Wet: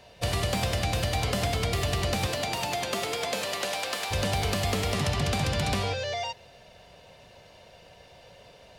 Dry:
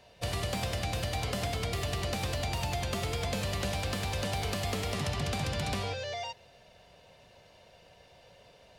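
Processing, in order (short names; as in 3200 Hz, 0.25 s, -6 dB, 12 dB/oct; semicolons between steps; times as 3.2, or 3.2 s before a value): 2.26–4.1 HPF 160 Hz -> 600 Hz 12 dB/oct; gain +5.5 dB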